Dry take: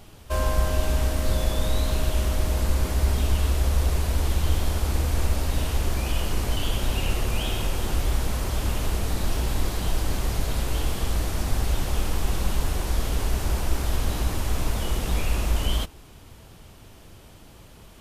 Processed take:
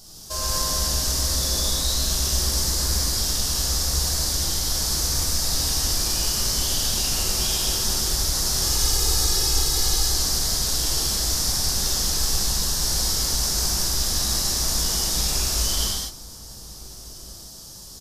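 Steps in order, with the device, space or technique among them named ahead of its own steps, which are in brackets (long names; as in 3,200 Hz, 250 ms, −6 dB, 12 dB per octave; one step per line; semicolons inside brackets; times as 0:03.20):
dynamic equaliser 2,000 Hz, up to +8 dB, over −50 dBFS, Q 0.83
over-bright horn tweeter (high shelf with overshoot 3,600 Hz +13.5 dB, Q 3; brickwall limiter −13 dBFS, peak gain reduction 7.5 dB)
0:08.60–0:10.05: comb filter 2.4 ms, depth 62%
slap from a distant wall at 250 metres, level −18 dB
reverb whose tail is shaped and stops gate 270 ms flat, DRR −6.5 dB
level −7 dB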